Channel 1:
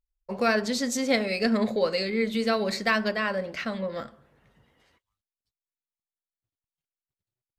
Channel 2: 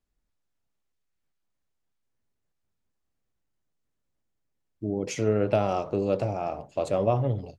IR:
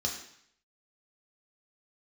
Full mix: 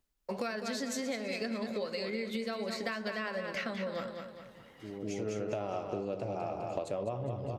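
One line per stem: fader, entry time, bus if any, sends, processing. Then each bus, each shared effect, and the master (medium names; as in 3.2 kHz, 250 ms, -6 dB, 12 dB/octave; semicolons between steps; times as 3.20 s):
-4.0 dB, 0.00 s, no send, echo send -8.5 dB, three bands compressed up and down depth 40%
+2.5 dB, 0.00 s, no send, echo send -8.5 dB, auto duck -16 dB, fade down 0.30 s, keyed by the first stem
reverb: none
echo: feedback delay 204 ms, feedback 44%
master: bass shelf 84 Hz -8.5 dB; compression 12:1, threshold -32 dBFS, peak gain reduction 16.5 dB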